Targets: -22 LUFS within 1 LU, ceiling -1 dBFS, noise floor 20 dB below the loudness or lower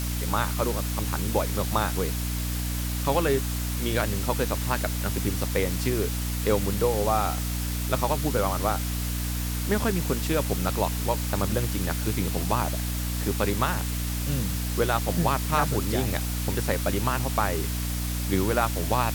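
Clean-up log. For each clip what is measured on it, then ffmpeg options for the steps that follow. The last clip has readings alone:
hum 60 Hz; harmonics up to 300 Hz; hum level -27 dBFS; noise floor -29 dBFS; noise floor target -47 dBFS; loudness -26.5 LUFS; peak -9.0 dBFS; loudness target -22.0 LUFS
-> -af "bandreject=f=60:t=h:w=6,bandreject=f=120:t=h:w=6,bandreject=f=180:t=h:w=6,bandreject=f=240:t=h:w=6,bandreject=f=300:t=h:w=6"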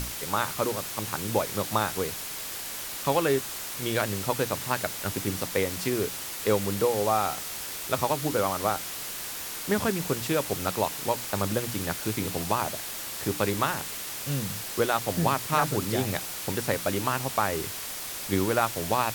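hum none; noise floor -36 dBFS; noise floor target -48 dBFS
-> -af "afftdn=nr=12:nf=-36"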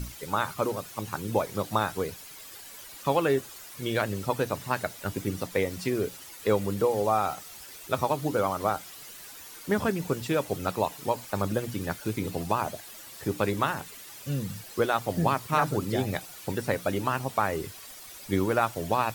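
noise floor -46 dBFS; noise floor target -49 dBFS
-> -af "afftdn=nr=6:nf=-46"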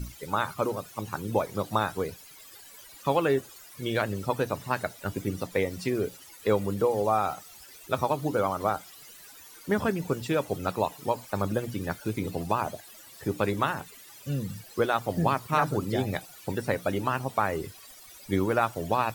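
noise floor -50 dBFS; loudness -29.5 LUFS; peak -11.0 dBFS; loudness target -22.0 LUFS
-> -af "volume=7.5dB"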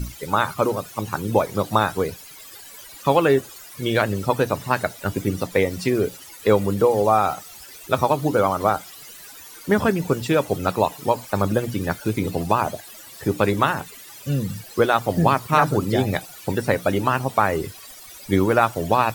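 loudness -22.0 LUFS; peak -3.5 dBFS; noise floor -42 dBFS

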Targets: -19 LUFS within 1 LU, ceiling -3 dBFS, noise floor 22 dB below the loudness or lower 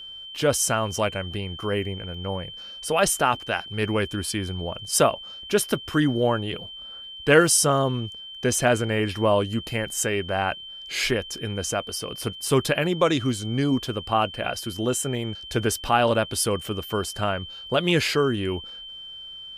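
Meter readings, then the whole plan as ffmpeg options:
steady tone 3100 Hz; tone level -37 dBFS; loudness -24.0 LUFS; peak -4.0 dBFS; loudness target -19.0 LUFS
-> -af "bandreject=f=3.1k:w=30"
-af "volume=5dB,alimiter=limit=-3dB:level=0:latency=1"

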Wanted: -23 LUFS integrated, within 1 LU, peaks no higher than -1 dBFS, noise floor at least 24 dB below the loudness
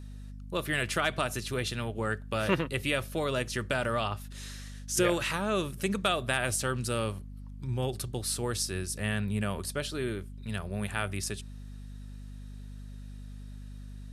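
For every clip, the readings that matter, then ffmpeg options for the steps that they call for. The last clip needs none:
hum 50 Hz; harmonics up to 250 Hz; hum level -41 dBFS; loudness -31.5 LUFS; peak -11.5 dBFS; loudness target -23.0 LUFS
-> -af "bandreject=f=50:t=h:w=6,bandreject=f=100:t=h:w=6,bandreject=f=150:t=h:w=6,bandreject=f=200:t=h:w=6,bandreject=f=250:t=h:w=6"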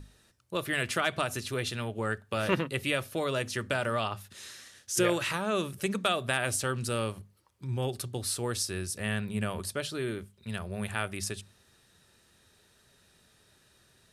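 hum none; loudness -31.5 LUFS; peak -11.5 dBFS; loudness target -23.0 LUFS
-> -af "volume=8.5dB"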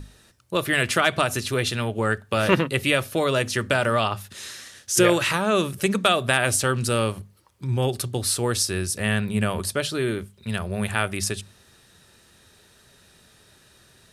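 loudness -23.0 LUFS; peak -3.0 dBFS; noise floor -56 dBFS

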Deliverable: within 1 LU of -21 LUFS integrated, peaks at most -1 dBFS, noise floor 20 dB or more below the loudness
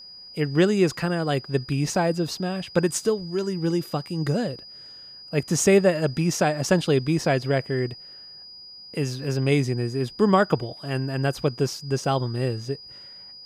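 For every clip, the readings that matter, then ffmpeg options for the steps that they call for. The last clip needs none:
steady tone 4900 Hz; tone level -41 dBFS; loudness -24.0 LUFS; peak -6.5 dBFS; loudness target -21.0 LUFS
-> -af "bandreject=f=4.9k:w=30"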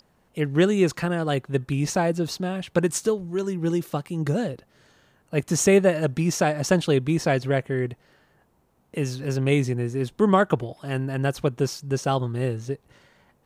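steady tone none; loudness -24.0 LUFS; peak -6.5 dBFS; loudness target -21.0 LUFS
-> -af "volume=3dB"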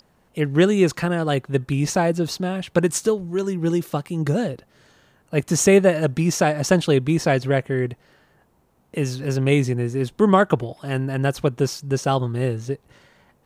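loudness -21.0 LUFS; peak -3.5 dBFS; noise floor -61 dBFS

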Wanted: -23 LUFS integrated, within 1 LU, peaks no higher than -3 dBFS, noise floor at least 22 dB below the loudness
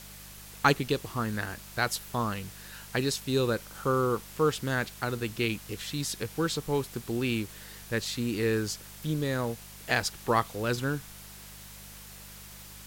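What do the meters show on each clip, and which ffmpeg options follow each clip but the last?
hum 50 Hz; harmonics up to 200 Hz; hum level -50 dBFS; noise floor -47 dBFS; noise floor target -53 dBFS; loudness -30.5 LUFS; peak -7.5 dBFS; loudness target -23.0 LUFS
-> -af "bandreject=f=50:t=h:w=4,bandreject=f=100:t=h:w=4,bandreject=f=150:t=h:w=4,bandreject=f=200:t=h:w=4"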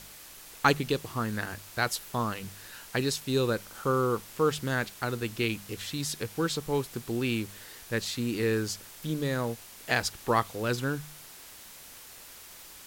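hum none; noise floor -49 dBFS; noise floor target -53 dBFS
-> -af "afftdn=nr=6:nf=-49"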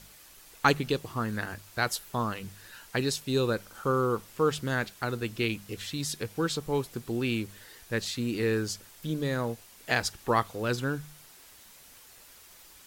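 noise floor -54 dBFS; loudness -30.5 LUFS; peak -7.5 dBFS; loudness target -23.0 LUFS
-> -af "volume=7.5dB,alimiter=limit=-3dB:level=0:latency=1"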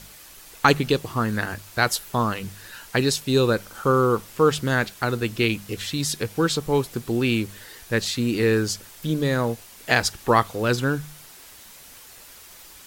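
loudness -23.0 LUFS; peak -3.0 dBFS; noise floor -46 dBFS

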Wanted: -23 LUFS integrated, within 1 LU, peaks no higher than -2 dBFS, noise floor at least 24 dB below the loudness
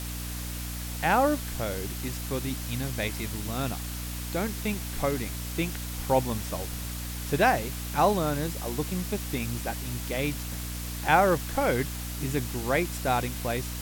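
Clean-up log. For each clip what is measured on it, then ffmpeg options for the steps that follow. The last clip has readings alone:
hum 60 Hz; harmonics up to 300 Hz; hum level -34 dBFS; noise floor -35 dBFS; noise floor target -53 dBFS; loudness -29.0 LUFS; peak -7.5 dBFS; loudness target -23.0 LUFS
-> -af "bandreject=f=60:t=h:w=4,bandreject=f=120:t=h:w=4,bandreject=f=180:t=h:w=4,bandreject=f=240:t=h:w=4,bandreject=f=300:t=h:w=4"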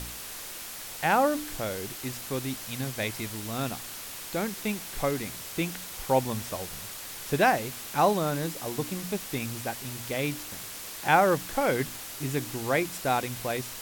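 hum none; noise floor -40 dBFS; noise floor target -54 dBFS
-> -af "afftdn=nr=14:nf=-40"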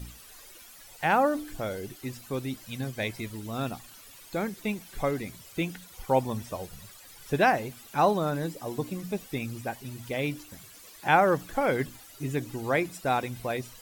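noise floor -50 dBFS; noise floor target -54 dBFS
-> -af "afftdn=nr=6:nf=-50"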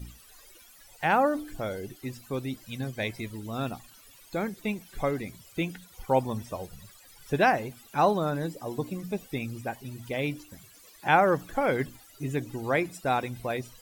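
noise floor -54 dBFS; loudness -29.5 LUFS; peak -7.5 dBFS; loudness target -23.0 LUFS
-> -af "volume=6.5dB,alimiter=limit=-2dB:level=0:latency=1"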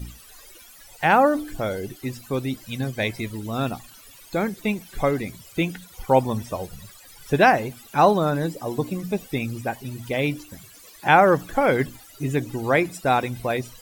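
loudness -23.5 LUFS; peak -2.0 dBFS; noise floor -48 dBFS

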